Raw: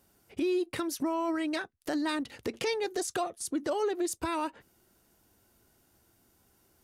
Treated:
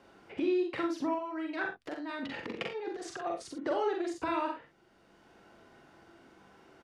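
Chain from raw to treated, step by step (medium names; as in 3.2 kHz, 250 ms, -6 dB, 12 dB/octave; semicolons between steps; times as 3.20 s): 1.14–3.59 s: compressor with a negative ratio -36 dBFS, ratio -0.5; low-pass 2.7 kHz 12 dB/octave; bass shelf 210 Hz -9.5 dB; doubling 47 ms -7 dB; early reflections 41 ms -4.5 dB, 62 ms -9 dB; three bands compressed up and down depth 40%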